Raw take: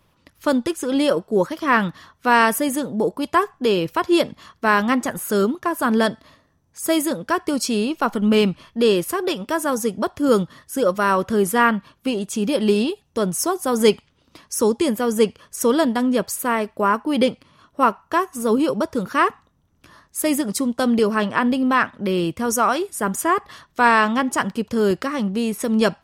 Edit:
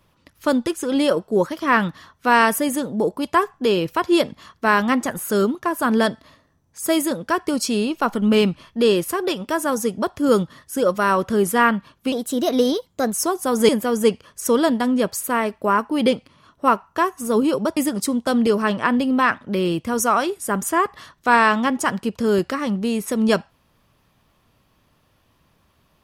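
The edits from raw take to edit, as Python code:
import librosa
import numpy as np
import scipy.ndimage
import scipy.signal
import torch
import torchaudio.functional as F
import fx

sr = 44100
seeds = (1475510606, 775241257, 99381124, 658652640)

y = fx.edit(x, sr, fx.speed_span(start_s=12.12, length_s=1.22, speed=1.2),
    fx.cut(start_s=13.89, length_s=0.95),
    fx.cut(start_s=18.92, length_s=1.37), tone=tone)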